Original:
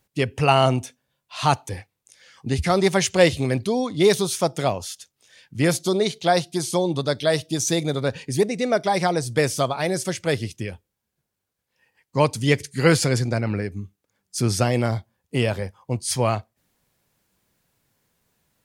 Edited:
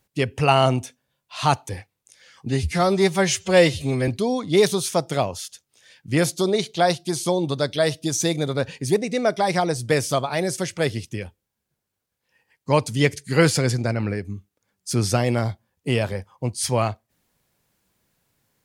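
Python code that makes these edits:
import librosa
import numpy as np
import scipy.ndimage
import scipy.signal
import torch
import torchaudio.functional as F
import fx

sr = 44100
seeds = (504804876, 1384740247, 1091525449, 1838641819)

y = fx.edit(x, sr, fx.stretch_span(start_s=2.49, length_s=1.06, factor=1.5), tone=tone)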